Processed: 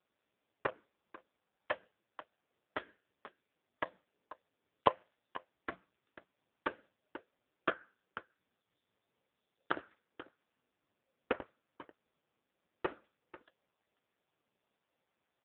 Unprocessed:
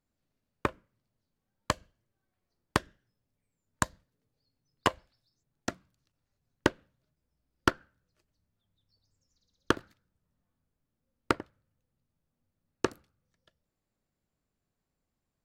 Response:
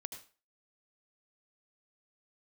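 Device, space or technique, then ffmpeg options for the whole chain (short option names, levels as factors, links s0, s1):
satellite phone: -af "highpass=360,lowpass=3200,aecho=1:1:491:0.126,volume=2" -ar 8000 -c:a libopencore_amrnb -b:a 5150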